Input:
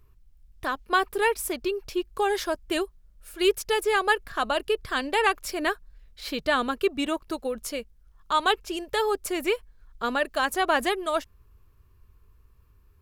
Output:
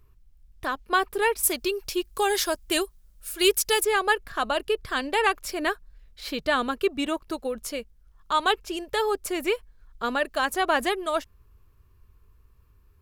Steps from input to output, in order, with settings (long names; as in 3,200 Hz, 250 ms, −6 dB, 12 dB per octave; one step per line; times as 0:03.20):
0:01.43–0:03.85: high-shelf EQ 3,500 Hz +12 dB